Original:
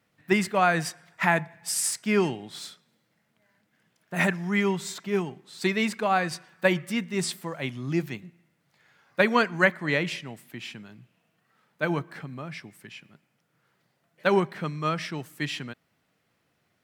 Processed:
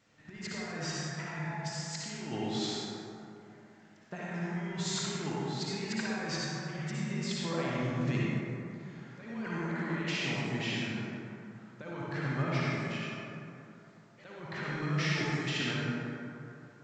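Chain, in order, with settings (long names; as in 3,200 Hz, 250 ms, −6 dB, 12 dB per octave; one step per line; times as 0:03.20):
compressor whose output falls as the input rises −35 dBFS, ratio −1
convolution reverb RT60 2.8 s, pre-delay 48 ms, DRR −6.5 dB
level −7.5 dB
A-law companding 128 kbit/s 16,000 Hz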